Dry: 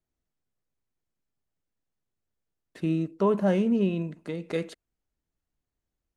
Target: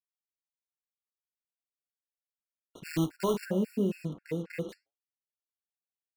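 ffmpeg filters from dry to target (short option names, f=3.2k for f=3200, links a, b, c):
-filter_complex "[0:a]lowpass=f=2.2k:p=1,bandreject=f=100.7:t=h:w=4,bandreject=f=201.4:t=h:w=4,bandreject=f=302.1:t=h:w=4,bandreject=f=402.8:t=h:w=4,bandreject=f=503.5:t=h:w=4,bandreject=f=604.2:t=h:w=4,bandreject=f=704.9:t=h:w=4,bandreject=f=805.6:t=h:w=4,bandreject=f=906.3:t=h:w=4,bandreject=f=1.007k:t=h:w=4,bandreject=f=1.1077k:t=h:w=4,bandreject=f=1.2084k:t=h:w=4,bandreject=f=1.3091k:t=h:w=4,alimiter=limit=-21dB:level=0:latency=1:release=129,acrusher=bits=7:mix=0:aa=0.5,flanger=delay=7.2:depth=7.1:regen=-76:speed=1:shape=sinusoidal,asplit=3[a][b][c];[a]afade=t=out:st=2.84:d=0.02[d];[b]acrusher=bits=2:mode=log:mix=0:aa=0.000001,afade=t=in:st=2.84:d=0.02,afade=t=out:st=3.44:d=0.02[e];[c]afade=t=in:st=3.44:d=0.02[f];[d][e][f]amix=inputs=3:normalize=0,afftfilt=real='re*gt(sin(2*PI*3.7*pts/sr)*(1-2*mod(floor(b*sr/1024/1400),2)),0)':imag='im*gt(sin(2*PI*3.7*pts/sr)*(1-2*mod(floor(b*sr/1024/1400),2)),0)':win_size=1024:overlap=0.75,volume=6dB"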